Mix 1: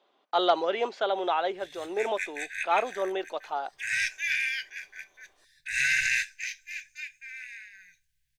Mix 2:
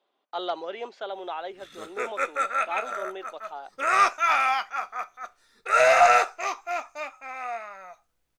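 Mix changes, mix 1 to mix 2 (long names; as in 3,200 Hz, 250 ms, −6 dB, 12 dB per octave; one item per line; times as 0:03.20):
speech −7.0 dB
background: remove linear-phase brick-wall band-stop 170–1,500 Hz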